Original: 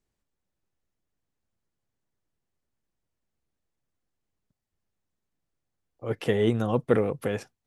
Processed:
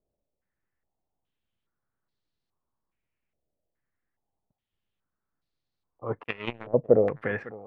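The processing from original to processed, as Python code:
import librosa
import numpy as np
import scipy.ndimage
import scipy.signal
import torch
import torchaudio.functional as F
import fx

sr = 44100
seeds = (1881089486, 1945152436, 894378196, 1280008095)

y = fx.power_curve(x, sr, exponent=3.0, at=(6.23, 6.74))
y = y + 10.0 ** (-18.0 / 20.0) * np.pad(y, (int(554 * sr / 1000.0), 0))[:len(y)]
y = fx.filter_held_lowpass(y, sr, hz=2.4, low_hz=610.0, high_hz=4200.0)
y = y * librosa.db_to_amplitude(-3.0)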